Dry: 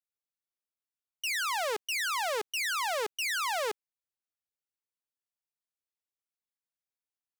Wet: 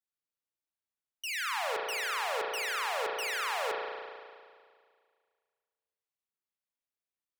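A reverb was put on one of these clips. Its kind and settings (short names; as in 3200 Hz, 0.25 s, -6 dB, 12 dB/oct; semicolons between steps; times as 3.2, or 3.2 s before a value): spring tank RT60 2 s, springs 34 ms, chirp 25 ms, DRR -1.5 dB; gain -5 dB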